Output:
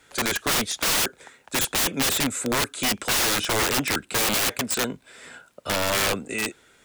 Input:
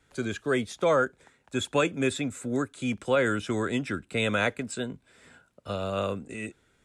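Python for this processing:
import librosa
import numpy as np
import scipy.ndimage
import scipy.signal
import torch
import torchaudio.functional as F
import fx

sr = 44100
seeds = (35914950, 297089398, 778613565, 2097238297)

y = fx.curve_eq(x, sr, hz=(100.0, 520.0, 5800.0), db=(0, 10, 13))
y = (np.mod(10.0 ** (17.0 / 20.0) * y + 1.0, 2.0) - 1.0) / 10.0 ** (17.0 / 20.0)
y = fx.quant_dither(y, sr, seeds[0], bits=12, dither='none')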